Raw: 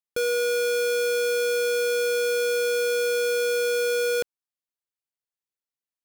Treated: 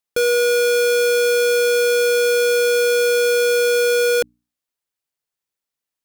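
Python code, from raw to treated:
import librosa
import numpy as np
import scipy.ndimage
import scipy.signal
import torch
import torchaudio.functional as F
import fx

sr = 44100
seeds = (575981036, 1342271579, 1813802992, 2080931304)

y = fx.hum_notches(x, sr, base_hz=60, count=5)
y = y * 10.0 ** (7.5 / 20.0)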